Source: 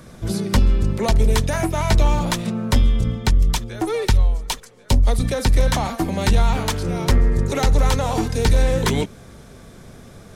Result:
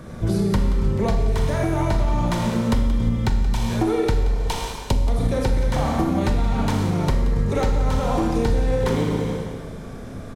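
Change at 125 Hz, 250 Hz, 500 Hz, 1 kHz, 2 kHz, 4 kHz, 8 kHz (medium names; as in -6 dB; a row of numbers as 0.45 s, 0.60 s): -1.5 dB, +1.5 dB, 0.0 dB, -1.5 dB, -4.5 dB, -6.5 dB, -8.0 dB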